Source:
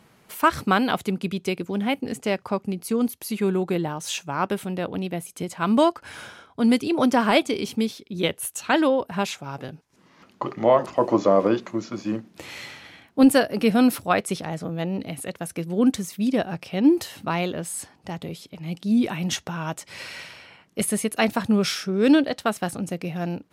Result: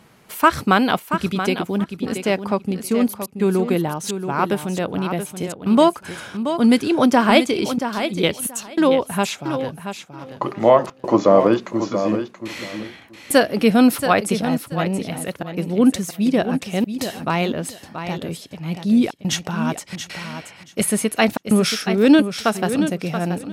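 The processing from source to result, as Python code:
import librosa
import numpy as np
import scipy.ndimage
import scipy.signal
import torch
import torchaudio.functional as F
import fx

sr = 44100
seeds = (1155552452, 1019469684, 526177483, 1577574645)

p1 = fx.step_gate(x, sr, bpm=106, pattern='xxxxxxx.xxxxx.xx', floor_db=-60.0, edge_ms=4.5)
p2 = p1 + fx.echo_feedback(p1, sr, ms=679, feedback_pct=18, wet_db=-9.0, dry=0)
y = F.gain(torch.from_numpy(p2), 4.5).numpy()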